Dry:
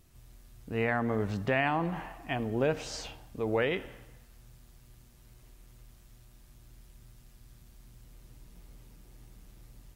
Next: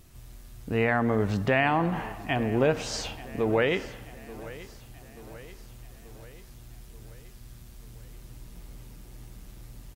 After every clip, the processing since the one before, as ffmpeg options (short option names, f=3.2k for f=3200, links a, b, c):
-filter_complex "[0:a]asplit=2[a][b];[b]alimiter=level_in=3.5dB:limit=-24dB:level=0:latency=1:release=416,volume=-3.5dB,volume=-2dB[c];[a][c]amix=inputs=2:normalize=0,aecho=1:1:883|1766|2649|3532|4415:0.126|0.0705|0.0395|0.0221|0.0124,volume=2.5dB"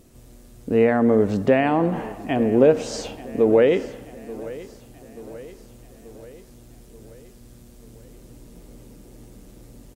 -af "equalizer=f=250:t=o:w=1:g=10,equalizer=f=500:t=o:w=1:g=11,equalizer=f=8k:t=o:w=1:g=5,volume=-2.5dB"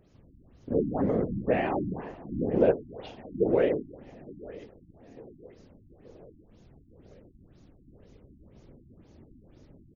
-af "afftfilt=real='hypot(re,im)*cos(2*PI*random(0))':imag='hypot(re,im)*sin(2*PI*random(1))':win_size=512:overlap=0.75,afftfilt=real='re*lt(b*sr/1024,330*pow(7200/330,0.5+0.5*sin(2*PI*2*pts/sr)))':imag='im*lt(b*sr/1024,330*pow(7200/330,0.5+0.5*sin(2*PI*2*pts/sr)))':win_size=1024:overlap=0.75,volume=-2.5dB"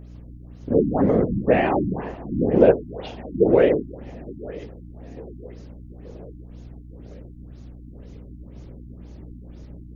-af "aeval=exprs='val(0)+0.00398*(sin(2*PI*60*n/s)+sin(2*PI*2*60*n/s)/2+sin(2*PI*3*60*n/s)/3+sin(2*PI*4*60*n/s)/4+sin(2*PI*5*60*n/s)/5)':c=same,volume=8dB"